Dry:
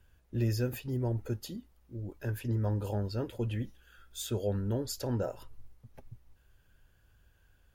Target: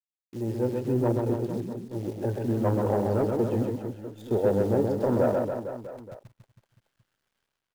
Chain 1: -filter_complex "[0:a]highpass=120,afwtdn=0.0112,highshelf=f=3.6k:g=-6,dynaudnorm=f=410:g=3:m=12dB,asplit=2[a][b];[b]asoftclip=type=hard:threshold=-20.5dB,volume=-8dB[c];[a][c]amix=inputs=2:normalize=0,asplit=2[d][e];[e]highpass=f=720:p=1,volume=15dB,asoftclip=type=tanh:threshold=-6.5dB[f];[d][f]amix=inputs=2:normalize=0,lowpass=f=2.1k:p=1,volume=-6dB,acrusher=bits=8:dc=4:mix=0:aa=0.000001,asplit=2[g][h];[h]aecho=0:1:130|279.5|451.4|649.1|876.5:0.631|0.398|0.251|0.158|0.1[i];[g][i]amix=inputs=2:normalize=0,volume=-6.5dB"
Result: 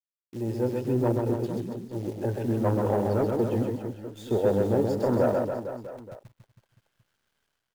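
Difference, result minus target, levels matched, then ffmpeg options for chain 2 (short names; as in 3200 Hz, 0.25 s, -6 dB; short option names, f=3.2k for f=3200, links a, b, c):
4000 Hz band +3.0 dB
-filter_complex "[0:a]highpass=120,afwtdn=0.0112,highshelf=f=3.6k:g=-16.5,dynaudnorm=f=410:g=3:m=12dB,asplit=2[a][b];[b]asoftclip=type=hard:threshold=-20.5dB,volume=-8dB[c];[a][c]amix=inputs=2:normalize=0,asplit=2[d][e];[e]highpass=f=720:p=1,volume=15dB,asoftclip=type=tanh:threshold=-6.5dB[f];[d][f]amix=inputs=2:normalize=0,lowpass=f=2.1k:p=1,volume=-6dB,acrusher=bits=8:dc=4:mix=0:aa=0.000001,asplit=2[g][h];[h]aecho=0:1:130|279.5|451.4|649.1|876.5:0.631|0.398|0.251|0.158|0.1[i];[g][i]amix=inputs=2:normalize=0,volume=-6.5dB"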